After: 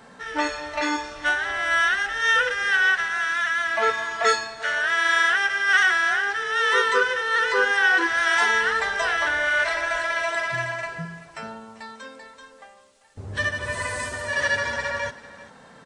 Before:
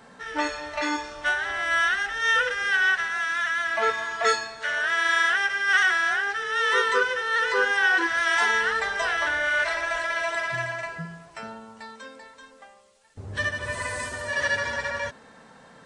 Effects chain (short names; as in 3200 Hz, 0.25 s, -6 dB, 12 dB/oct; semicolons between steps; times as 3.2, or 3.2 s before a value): echo 0.39 s -18 dB; gain +2 dB